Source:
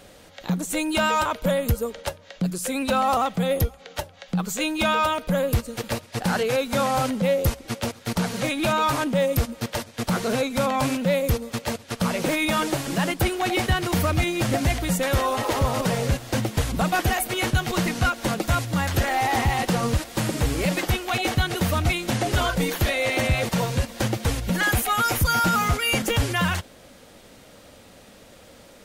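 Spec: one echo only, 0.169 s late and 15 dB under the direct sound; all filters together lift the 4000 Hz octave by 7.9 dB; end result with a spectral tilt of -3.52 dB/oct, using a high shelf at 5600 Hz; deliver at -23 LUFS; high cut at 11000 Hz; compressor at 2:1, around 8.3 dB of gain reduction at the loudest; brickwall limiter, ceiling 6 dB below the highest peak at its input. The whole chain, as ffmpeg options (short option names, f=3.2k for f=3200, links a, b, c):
-af "lowpass=11k,equalizer=f=4k:t=o:g=8.5,highshelf=f=5.6k:g=4.5,acompressor=threshold=-32dB:ratio=2,alimiter=limit=-20.5dB:level=0:latency=1,aecho=1:1:169:0.178,volume=7dB"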